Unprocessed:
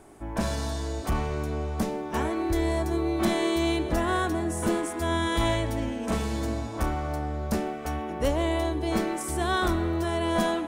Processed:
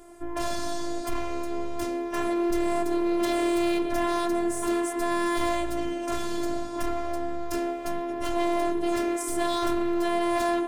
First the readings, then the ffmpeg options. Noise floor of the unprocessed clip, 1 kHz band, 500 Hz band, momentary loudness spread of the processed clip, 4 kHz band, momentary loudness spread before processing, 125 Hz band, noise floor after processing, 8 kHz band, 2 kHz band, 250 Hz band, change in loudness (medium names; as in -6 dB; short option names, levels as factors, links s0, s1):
-35 dBFS, +1.0 dB, +1.5 dB, 7 LU, -2.0 dB, 6 LU, -15.5 dB, -33 dBFS, +0.5 dB, -1.5 dB, +1.0 dB, 0.0 dB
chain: -af "asoftclip=type=hard:threshold=0.0531,afftfilt=real='hypot(re,im)*cos(PI*b)':imag='0':win_size=512:overlap=0.75,volume=1.78"